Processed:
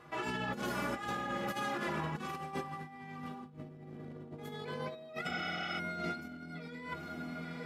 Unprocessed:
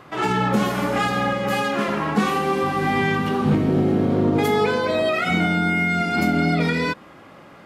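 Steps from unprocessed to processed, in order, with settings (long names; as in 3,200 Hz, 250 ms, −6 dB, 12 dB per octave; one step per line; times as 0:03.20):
stiff-string resonator 72 Hz, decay 0.21 s, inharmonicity 0.03
on a send: feedback delay with all-pass diffusion 918 ms, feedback 43%, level −14 dB
on the sum: compressor whose output falls as the input rises −31 dBFS, ratio −0.5
healed spectral selection 0:05.32–0:05.76, 530–6,700 Hz before
level −8.5 dB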